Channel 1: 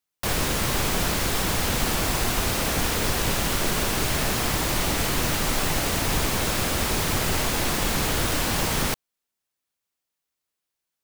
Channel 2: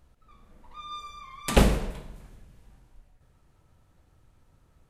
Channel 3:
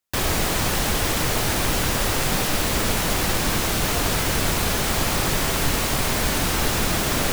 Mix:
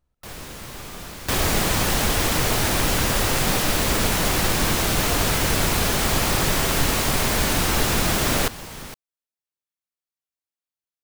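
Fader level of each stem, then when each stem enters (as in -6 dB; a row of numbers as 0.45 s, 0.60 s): -12.5 dB, -13.0 dB, +1.0 dB; 0.00 s, 0.00 s, 1.15 s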